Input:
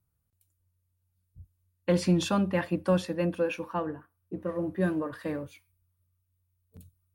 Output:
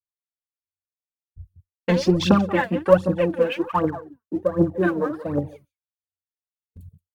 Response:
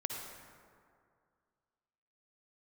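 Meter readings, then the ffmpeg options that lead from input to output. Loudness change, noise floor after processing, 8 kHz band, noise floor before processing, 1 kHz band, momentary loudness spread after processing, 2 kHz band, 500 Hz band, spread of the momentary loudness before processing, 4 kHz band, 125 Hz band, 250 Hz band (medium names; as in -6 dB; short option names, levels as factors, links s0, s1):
+8.0 dB, under -85 dBFS, no reading, -77 dBFS, +10.0 dB, 10 LU, +8.5 dB, +9.5 dB, 12 LU, +7.0 dB, +6.0 dB, +7.0 dB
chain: -af "aecho=1:1:178:0.188,afwtdn=0.00891,aphaser=in_gain=1:out_gain=1:delay=4.7:decay=0.74:speed=1.3:type=triangular,agate=range=0.0224:threshold=0.00282:ratio=3:detection=peak,volume=2"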